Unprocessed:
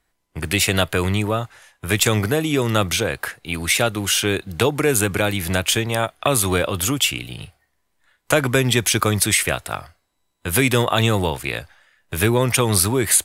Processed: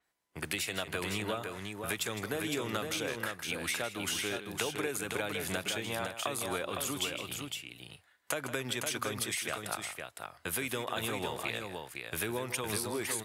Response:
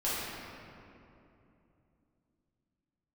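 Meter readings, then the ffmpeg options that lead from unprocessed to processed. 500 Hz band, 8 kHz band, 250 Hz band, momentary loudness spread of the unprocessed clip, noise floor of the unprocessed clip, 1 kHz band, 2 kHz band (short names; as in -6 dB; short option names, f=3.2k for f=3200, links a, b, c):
-15.5 dB, -16.0 dB, -16.5 dB, 12 LU, -71 dBFS, -14.0 dB, -13.0 dB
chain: -filter_complex "[0:a]highpass=f=320:p=1,acompressor=threshold=-25dB:ratio=6,asplit=2[a][b];[b]aecho=0:1:159|510:0.266|0.562[c];[a][c]amix=inputs=2:normalize=0,adynamicequalizer=threshold=0.0112:dfrequency=6700:dqfactor=0.7:tfrequency=6700:tqfactor=0.7:attack=5:release=100:ratio=0.375:range=2:mode=cutabove:tftype=highshelf,volume=-7dB"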